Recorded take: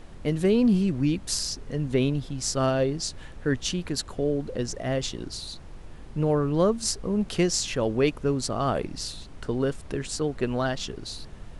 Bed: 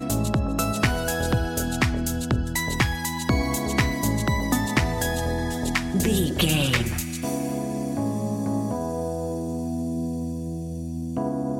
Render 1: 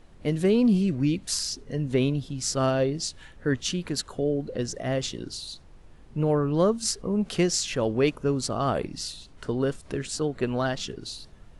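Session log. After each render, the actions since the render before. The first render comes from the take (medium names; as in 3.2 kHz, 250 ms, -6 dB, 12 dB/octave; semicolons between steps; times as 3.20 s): noise print and reduce 8 dB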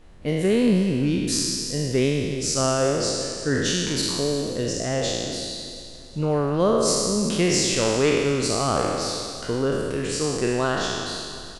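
spectral sustain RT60 1.91 s; feedback delay 359 ms, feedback 46%, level -16 dB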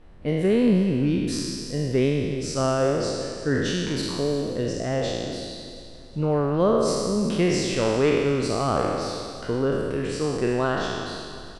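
treble shelf 3.9 kHz -11.5 dB; band-stop 6.8 kHz, Q 11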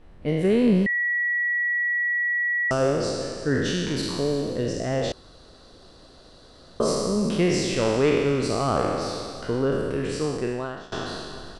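0.86–2.71 s: bleep 1.93 kHz -21 dBFS; 5.12–6.80 s: room tone; 10.19–10.92 s: fade out, to -23 dB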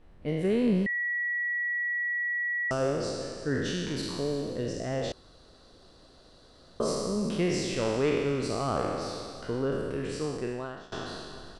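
trim -6 dB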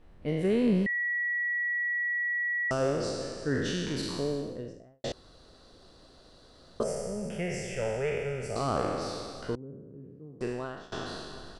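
4.15–5.04 s: studio fade out; 6.83–8.56 s: static phaser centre 1.1 kHz, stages 6; 9.55–10.41 s: ladder band-pass 180 Hz, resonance 25%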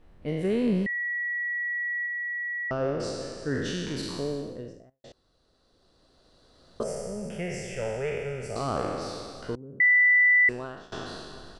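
2.06–3.00 s: Gaussian low-pass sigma 2.4 samples; 4.90–6.95 s: fade in quadratic, from -15.5 dB; 9.80–10.49 s: bleep 1.98 kHz -16 dBFS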